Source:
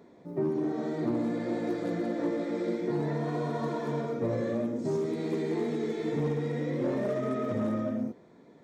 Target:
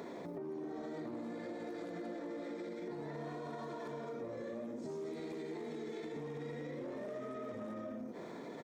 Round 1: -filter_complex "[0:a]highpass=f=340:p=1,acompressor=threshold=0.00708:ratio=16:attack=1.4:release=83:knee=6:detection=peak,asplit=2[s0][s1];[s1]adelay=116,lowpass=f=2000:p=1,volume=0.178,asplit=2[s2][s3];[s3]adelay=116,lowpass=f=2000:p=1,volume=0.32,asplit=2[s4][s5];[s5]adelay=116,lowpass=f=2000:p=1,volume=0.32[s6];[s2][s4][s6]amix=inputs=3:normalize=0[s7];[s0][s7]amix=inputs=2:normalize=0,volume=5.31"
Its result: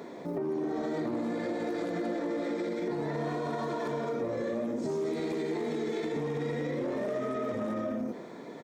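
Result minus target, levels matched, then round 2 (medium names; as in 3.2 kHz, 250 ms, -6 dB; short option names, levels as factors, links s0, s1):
compression: peak gain reduction -11 dB
-filter_complex "[0:a]highpass=f=340:p=1,acompressor=threshold=0.00188:ratio=16:attack=1.4:release=83:knee=6:detection=peak,asplit=2[s0][s1];[s1]adelay=116,lowpass=f=2000:p=1,volume=0.178,asplit=2[s2][s3];[s3]adelay=116,lowpass=f=2000:p=1,volume=0.32,asplit=2[s4][s5];[s5]adelay=116,lowpass=f=2000:p=1,volume=0.32[s6];[s2][s4][s6]amix=inputs=3:normalize=0[s7];[s0][s7]amix=inputs=2:normalize=0,volume=5.31"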